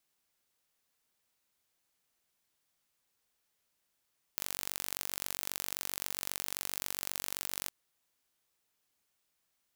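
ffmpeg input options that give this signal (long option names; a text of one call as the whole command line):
ffmpeg -f lavfi -i "aevalsrc='0.422*eq(mod(n,928),0)*(0.5+0.5*eq(mod(n,1856),0))':duration=3.32:sample_rate=44100" out.wav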